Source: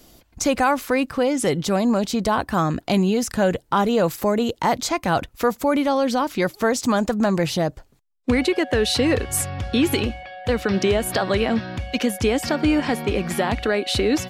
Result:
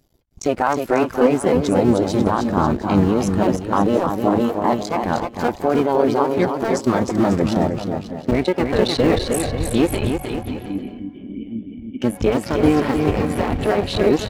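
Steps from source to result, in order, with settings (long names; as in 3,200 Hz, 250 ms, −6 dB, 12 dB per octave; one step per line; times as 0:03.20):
sub-harmonics by changed cycles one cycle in 2, muted
in parallel at 0 dB: brickwall limiter −18.5 dBFS, peak gain reduction 10.5 dB
0:10.43–0:12.02: on the sum: formant resonators in series i
floating-point word with a short mantissa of 4 bits
bouncing-ball delay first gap 310 ms, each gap 0.75×, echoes 5
every bin expanded away from the loudest bin 1.5 to 1
level +1 dB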